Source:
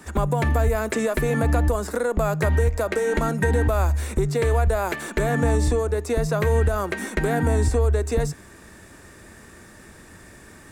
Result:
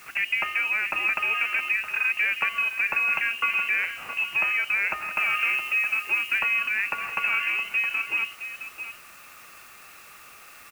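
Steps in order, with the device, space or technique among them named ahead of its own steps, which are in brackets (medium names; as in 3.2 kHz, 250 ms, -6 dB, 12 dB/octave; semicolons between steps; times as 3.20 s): scrambled radio voice (band-pass 370–2700 Hz; frequency inversion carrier 3 kHz; white noise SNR 24 dB); 5.17–6.39 s: treble shelf 6.6 kHz +5 dB; delay 666 ms -11 dB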